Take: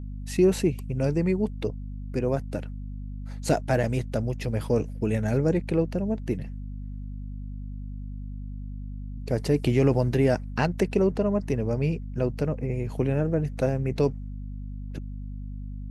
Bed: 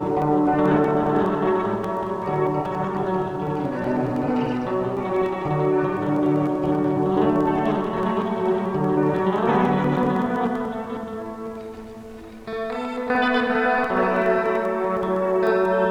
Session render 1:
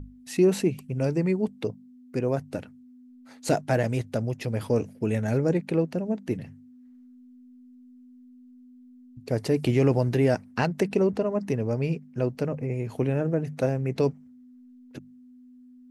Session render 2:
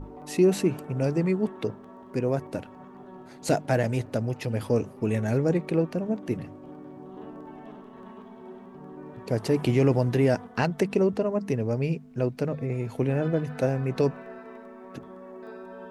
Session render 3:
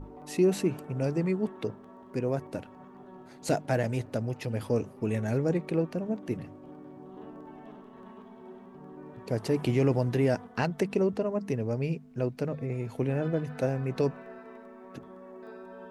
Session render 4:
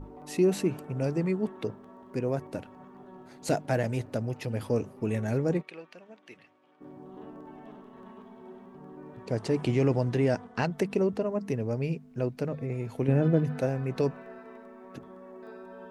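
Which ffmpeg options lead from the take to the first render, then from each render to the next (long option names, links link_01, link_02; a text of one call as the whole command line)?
ffmpeg -i in.wav -af "bandreject=frequency=50:width_type=h:width=6,bandreject=frequency=100:width_type=h:width=6,bandreject=frequency=150:width_type=h:width=6,bandreject=frequency=200:width_type=h:width=6" out.wav
ffmpeg -i in.wav -i bed.wav -filter_complex "[1:a]volume=-23dB[link_01];[0:a][link_01]amix=inputs=2:normalize=0" out.wav
ffmpeg -i in.wav -af "volume=-3.5dB" out.wav
ffmpeg -i in.wav -filter_complex "[0:a]asplit=3[link_01][link_02][link_03];[link_01]afade=type=out:start_time=5.61:duration=0.02[link_04];[link_02]bandpass=frequency=2800:width_type=q:width=1.1,afade=type=in:start_time=5.61:duration=0.02,afade=type=out:start_time=6.8:duration=0.02[link_05];[link_03]afade=type=in:start_time=6.8:duration=0.02[link_06];[link_04][link_05][link_06]amix=inputs=3:normalize=0,asettb=1/sr,asplit=3[link_07][link_08][link_09];[link_07]atrim=end=9.254[link_10];[link_08]atrim=start=9.25:end=10.72,asetpts=PTS-STARTPTS,afade=type=in:duration=0.004:curve=qsin,afade=type=out:start_time=1.466:duration=0.004:curve=qsin,lowpass=frequency=9200:width=0.5412,lowpass=frequency=9200:width=1.3066[link_11];[link_09]atrim=start=10.716[link_12];[link_10][link_11]acrossfade=duration=0.004:curve1=hsin:curve2=qsin[link_13];[link_13][link_12]acrossfade=duration=0.004:curve1=qsin:curve2=hsin,asettb=1/sr,asplit=3[link_14][link_15][link_16];[link_14]atrim=end=13.084[link_17];[link_15]atrim=start=13.08:end=13.59,asetpts=PTS-STARTPTS,afade=type=in:duration=0.004:curve=qsin,afade=type=out:start_time=0.506:duration=0.004:curve=qsin,equalizer=frequency=190:width=0.5:gain=7.5[link_18];[link_16]atrim=start=13.586[link_19];[link_17][link_18]acrossfade=duration=0.004:curve1=hsin:curve2=qsin[link_20];[link_20][link_19]acrossfade=duration=0.004:curve1=qsin:curve2=hsin" out.wav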